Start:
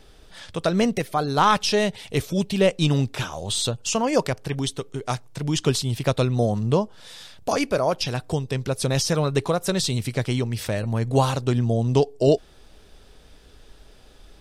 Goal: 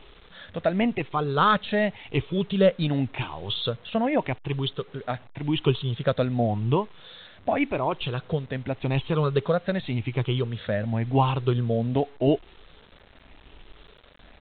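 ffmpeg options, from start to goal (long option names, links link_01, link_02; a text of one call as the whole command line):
ffmpeg -i in.wav -af "afftfilt=real='re*pow(10,10/40*sin(2*PI*(0.67*log(max(b,1)*sr/1024/100)/log(2)-(0.88)*(pts-256)/sr)))':imag='im*pow(10,10/40*sin(2*PI*(0.67*log(max(b,1)*sr/1024/100)/log(2)-(0.88)*(pts-256)/sr)))':win_size=1024:overlap=0.75,aresample=8000,acrusher=bits=7:mix=0:aa=0.000001,aresample=44100,volume=-3.5dB" out.wav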